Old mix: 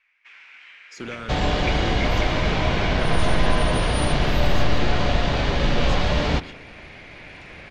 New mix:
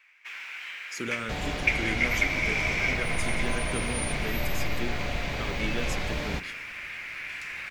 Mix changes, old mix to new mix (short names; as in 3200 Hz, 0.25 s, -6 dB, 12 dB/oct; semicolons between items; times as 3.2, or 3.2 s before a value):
first sound +7.0 dB; second sound -11.0 dB; master: remove LPF 5000 Hz 12 dB/oct